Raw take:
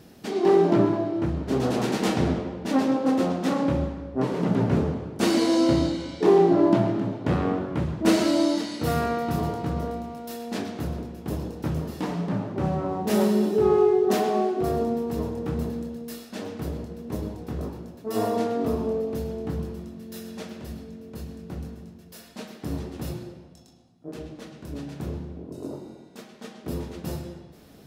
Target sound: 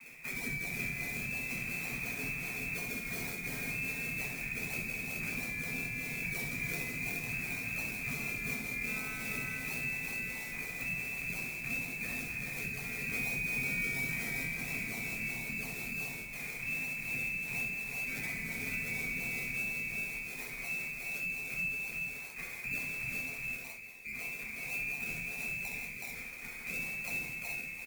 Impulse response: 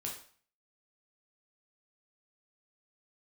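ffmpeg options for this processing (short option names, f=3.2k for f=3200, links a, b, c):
-filter_complex "[0:a]acrossover=split=450|970[a][b][c];[b]acompressor=threshold=-41dB:ratio=6[d];[a][d][c]amix=inputs=3:normalize=0,lowpass=f=2.3k:t=q:w=0.5098,lowpass=f=2.3k:t=q:w=0.6013,lowpass=f=2.3k:t=q:w=0.9,lowpass=f=2.3k:t=q:w=2.563,afreqshift=-2700,asplit=2[e][f];[f]acrusher=samples=36:mix=1:aa=0.000001:lfo=1:lforange=36:lforate=1.4,volume=-4.5dB[g];[e][g]amix=inputs=2:normalize=0,aecho=1:1:65|160|372|423:0.531|0.266|0.531|0.562,crystalizer=i=9.5:c=0,acrossover=split=100|260[h][i][j];[h]acompressor=threshold=-41dB:ratio=4[k];[i]acompressor=threshold=-33dB:ratio=4[l];[j]acompressor=threshold=-25dB:ratio=4[m];[k][l][m]amix=inputs=3:normalize=0[n];[1:a]atrim=start_sample=2205,asetrate=79380,aresample=44100[o];[n][o]afir=irnorm=-1:irlink=0,volume=-7dB"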